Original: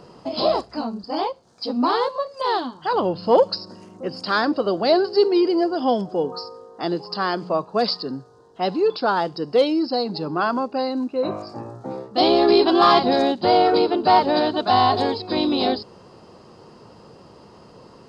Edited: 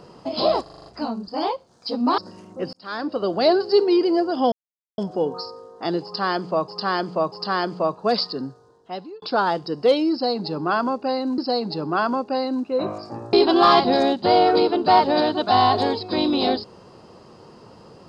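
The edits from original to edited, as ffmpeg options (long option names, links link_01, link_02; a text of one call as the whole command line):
ffmpeg -i in.wav -filter_complex "[0:a]asplit=15[link_01][link_02][link_03][link_04][link_05][link_06][link_07][link_08][link_09][link_10][link_11][link_12][link_13][link_14][link_15];[link_01]atrim=end=0.662[link_16];[link_02]atrim=start=0.618:end=0.662[link_17];[link_03]atrim=start=0.618:end=0.662[link_18];[link_04]atrim=start=0.618:end=0.662[link_19];[link_05]atrim=start=0.618:end=0.662[link_20];[link_06]atrim=start=0.618:end=0.662[link_21];[link_07]atrim=start=0.618:end=1.942[link_22];[link_08]atrim=start=3.618:end=4.17,asetpts=PTS-STARTPTS,afade=type=out:start_time=0.548:duration=0.004:curve=hsin[link_23];[link_09]atrim=start=4.17:end=5.96,asetpts=PTS-STARTPTS,afade=type=in:duration=0.64,afade=type=out:start_time=1.786:duration=0.004:curve=hsin,apad=pad_dur=0.46[link_24];[link_10]atrim=start=5.96:end=7.662,asetpts=PTS-STARTPTS,afade=type=in:duration=0.004:curve=hsin[link_25];[link_11]atrim=start=7.018:end=7.662[link_26];[link_12]atrim=start=7.018:end=8.92,asetpts=PTS-STARTPTS,afade=type=out:start_time=1.142:duration=0.76[link_27];[link_13]atrim=start=8.92:end=11.082,asetpts=PTS-STARTPTS,afade=type=in:duration=0.004:curve=hsin[link_28];[link_14]atrim=start=9.818:end=11.772[link_29];[link_15]atrim=start=12.518[link_30];[link_16][link_17]acrossfade=duration=0.004:curve1=hsin:curve2=hsin[link_31];[link_31][link_18]acrossfade=duration=0.004:curve1=hsin:curve2=hsin[link_32];[link_32][link_19]acrossfade=duration=0.004:curve1=hsin:curve2=hsin[link_33];[link_33][link_20]acrossfade=duration=0.004:curve1=hsin:curve2=hsin[link_34];[link_34][link_21]acrossfade=duration=0.004:curve1=hsin:curve2=hsin[link_35];[link_35][link_22]acrossfade=duration=0.004:curve1=hsin:curve2=hsin[link_36];[link_23][link_24][link_25]concat=n=3:v=0:a=1[link_37];[link_36][link_37]acrossfade=duration=0.004:curve1=hsin:curve2=hsin[link_38];[link_38][link_26]acrossfade=duration=0.004:curve1=hsin:curve2=hsin[link_39];[link_27][link_28]concat=n=2:v=0:a=1[link_40];[link_39][link_40]acrossfade=duration=0.004:curve1=hsin:curve2=hsin[link_41];[link_41][link_29]acrossfade=duration=0.004:curve1=hsin:curve2=hsin[link_42];[link_42][link_30]acrossfade=duration=0.004:curve1=hsin:curve2=hsin" out.wav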